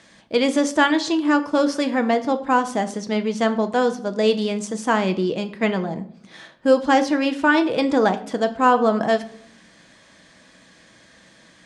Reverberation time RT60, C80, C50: 0.65 s, 18.0 dB, 15.0 dB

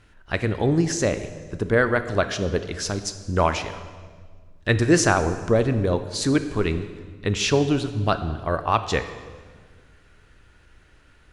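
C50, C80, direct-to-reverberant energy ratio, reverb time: 11.5 dB, 12.5 dB, 10.0 dB, 1.7 s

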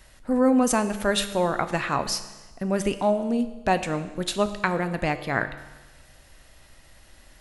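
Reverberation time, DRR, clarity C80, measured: 1.2 s, 10.0 dB, 13.5 dB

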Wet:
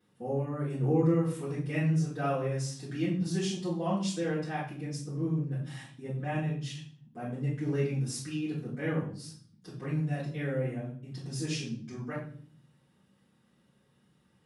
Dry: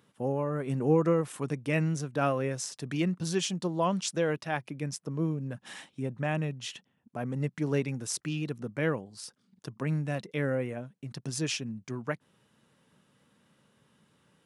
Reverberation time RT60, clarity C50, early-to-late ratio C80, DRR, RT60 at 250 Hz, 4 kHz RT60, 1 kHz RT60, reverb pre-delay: 0.50 s, 4.5 dB, 9.0 dB, −13.5 dB, 0.90 s, 0.45 s, 0.40 s, 4 ms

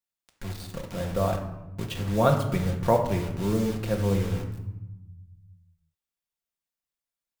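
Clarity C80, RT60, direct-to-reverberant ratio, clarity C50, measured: 10.0 dB, 1.0 s, 1.5 dB, 7.5 dB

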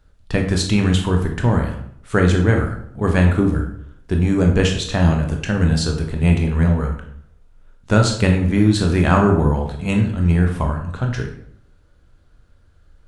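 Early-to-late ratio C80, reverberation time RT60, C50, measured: 10.0 dB, 0.70 s, 6.5 dB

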